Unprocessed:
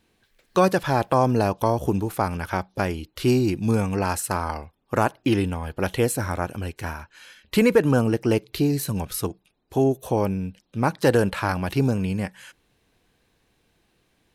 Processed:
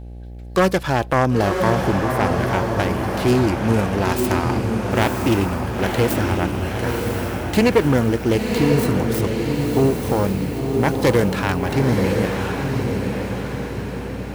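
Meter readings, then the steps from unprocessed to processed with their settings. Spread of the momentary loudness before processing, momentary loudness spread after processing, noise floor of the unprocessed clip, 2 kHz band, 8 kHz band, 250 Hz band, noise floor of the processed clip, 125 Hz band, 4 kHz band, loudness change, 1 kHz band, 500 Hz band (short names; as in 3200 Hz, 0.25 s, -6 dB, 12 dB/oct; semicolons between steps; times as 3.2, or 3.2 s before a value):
10 LU, 7 LU, -68 dBFS, +6.0 dB, +1.0 dB, +4.5 dB, -30 dBFS, +5.5 dB, +6.0 dB, +3.5 dB, +3.5 dB, +4.0 dB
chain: self-modulated delay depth 0.23 ms; diffused feedback echo 1 s, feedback 55%, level -3 dB; buzz 60 Hz, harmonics 14, -37 dBFS -8 dB/oct; gain +2.5 dB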